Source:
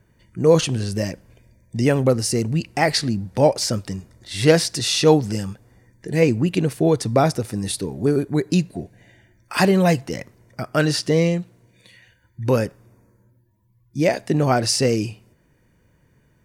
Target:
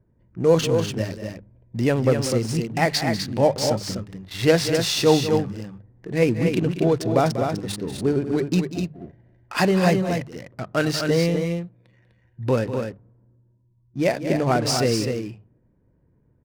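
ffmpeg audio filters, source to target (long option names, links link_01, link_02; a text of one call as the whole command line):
ffmpeg -i in.wav -af "adynamicsmooth=sensitivity=7.5:basefreq=700,bandreject=frequency=50:width_type=h:width=6,bandreject=frequency=100:width_type=h:width=6,bandreject=frequency=150:width_type=h:width=6,bandreject=frequency=200:width_type=h:width=6,aecho=1:1:192.4|250.7:0.251|0.501,volume=-2.5dB" out.wav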